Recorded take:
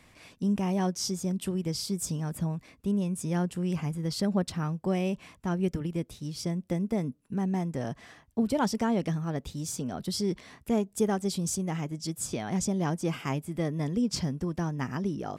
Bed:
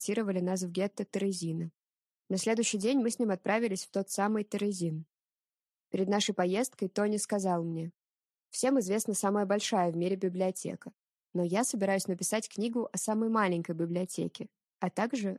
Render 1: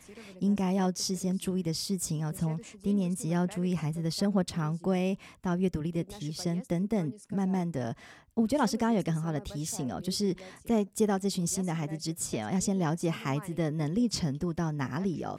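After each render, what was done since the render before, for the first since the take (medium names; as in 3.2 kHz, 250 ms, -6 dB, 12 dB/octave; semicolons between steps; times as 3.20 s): add bed -18.5 dB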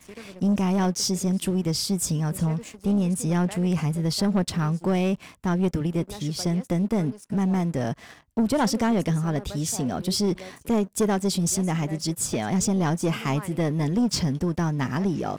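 waveshaping leveller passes 2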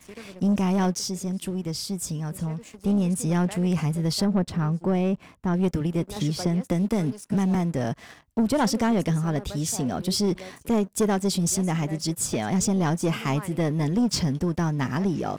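0.99–2.73 s: gain -5 dB; 4.24–5.54 s: treble shelf 2.2 kHz -10.5 dB; 6.16–7.55 s: three bands compressed up and down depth 70%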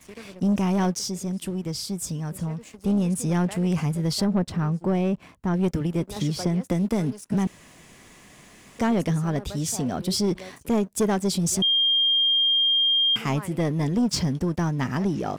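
7.47–8.79 s: room tone; 11.62–13.16 s: bleep 3.21 kHz -17.5 dBFS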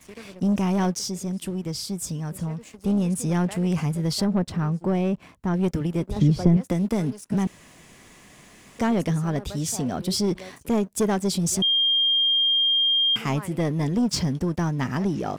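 6.09–6.57 s: tilt EQ -3 dB/octave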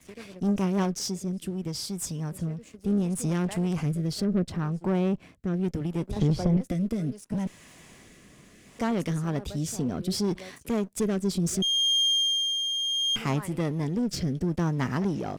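single-diode clipper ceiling -23.5 dBFS; rotary cabinet horn 8 Hz, later 0.7 Hz, at 0.37 s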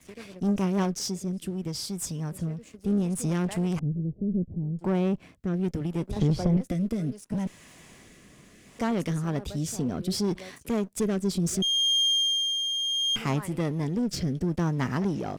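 3.79–4.79 s: Gaussian low-pass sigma 20 samples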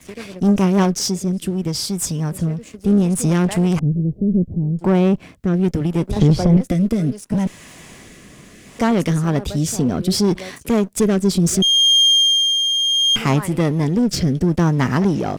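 trim +10.5 dB; peak limiter -3 dBFS, peak gain reduction 2.5 dB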